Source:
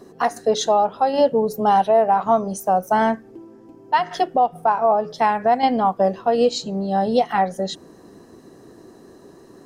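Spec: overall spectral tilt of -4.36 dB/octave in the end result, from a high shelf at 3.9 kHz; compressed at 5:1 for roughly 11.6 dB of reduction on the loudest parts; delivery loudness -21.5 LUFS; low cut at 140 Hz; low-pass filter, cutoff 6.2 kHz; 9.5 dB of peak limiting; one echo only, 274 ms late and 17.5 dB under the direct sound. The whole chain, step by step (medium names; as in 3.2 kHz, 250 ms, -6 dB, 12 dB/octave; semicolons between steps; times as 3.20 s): high-pass 140 Hz; low-pass 6.2 kHz; treble shelf 3.9 kHz -7.5 dB; compression 5:1, threshold -26 dBFS; peak limiter -24.5 dBFS; delay 274 ms -17.5 dB; trim +12.5 dB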